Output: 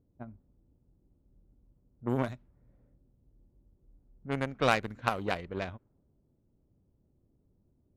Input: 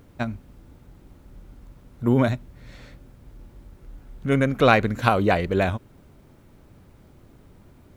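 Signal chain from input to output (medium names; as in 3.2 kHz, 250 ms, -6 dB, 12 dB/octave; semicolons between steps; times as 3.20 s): Chebyshev shaper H 7 -20 dB, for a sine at -1 dBFS; level-controlled noise filter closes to 470 Hz, open at -19.5 dBFS; trim -8 dB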